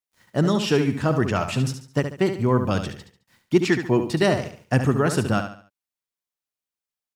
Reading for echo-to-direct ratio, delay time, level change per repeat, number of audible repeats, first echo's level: -8.0 dB, 71 ms, -9.0 dB, 3, -8.5 dB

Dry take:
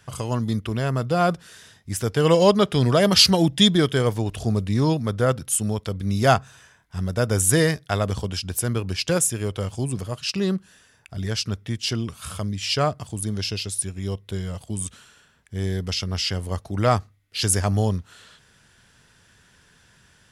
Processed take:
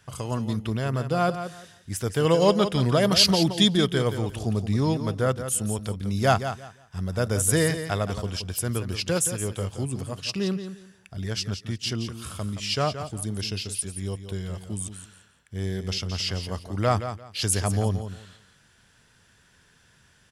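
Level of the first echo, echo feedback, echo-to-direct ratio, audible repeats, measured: -10.0 dB, 21%, -10.0 dB, 2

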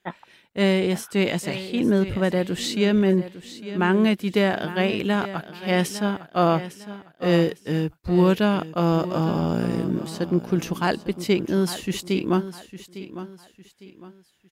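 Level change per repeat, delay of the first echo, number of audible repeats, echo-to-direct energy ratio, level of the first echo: -9.5 dB, 0.855 s, 3, -13.0 dB, -13.5 dB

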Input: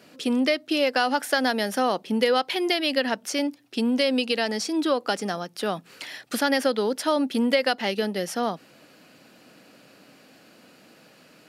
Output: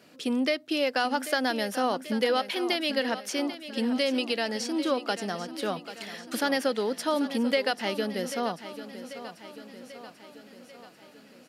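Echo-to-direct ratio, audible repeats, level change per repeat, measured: -11.0 dB, 5, -4.5 dB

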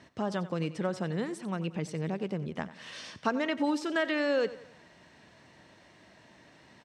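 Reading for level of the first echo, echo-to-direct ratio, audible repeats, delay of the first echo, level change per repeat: -16.0 dB, -15.0 dB, 3, 90 ms, -7.5 dB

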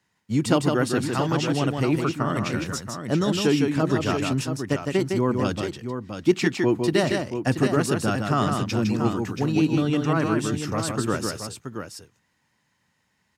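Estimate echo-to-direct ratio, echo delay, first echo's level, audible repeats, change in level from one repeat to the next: -3.0 dB, 0.158 s, -4.5 dB, 2, no steady repeat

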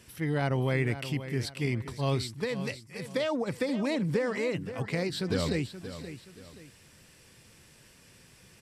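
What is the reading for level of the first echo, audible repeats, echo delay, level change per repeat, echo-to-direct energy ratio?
-12.0 dB, 2, 0.526 s, -9.0 dB, -11.5 dB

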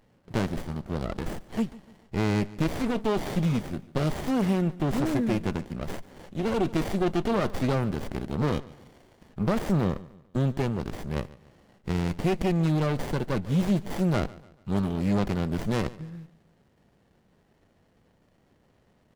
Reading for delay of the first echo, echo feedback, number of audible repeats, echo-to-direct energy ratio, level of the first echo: 0.144 s, 40%, 2, -19.5 dB, -20.0 dB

